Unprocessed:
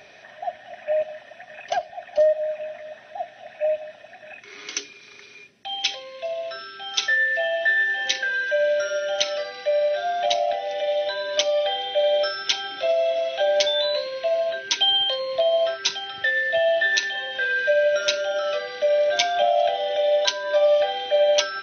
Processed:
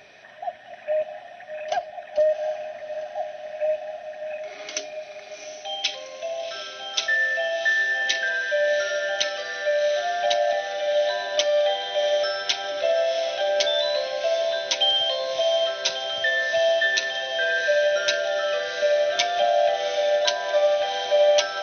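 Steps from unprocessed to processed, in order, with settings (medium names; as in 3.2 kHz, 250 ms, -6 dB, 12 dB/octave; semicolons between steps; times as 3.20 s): echo that smears into a reverb 744 ms, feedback 72%, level -9 dB; trim -1.5 dB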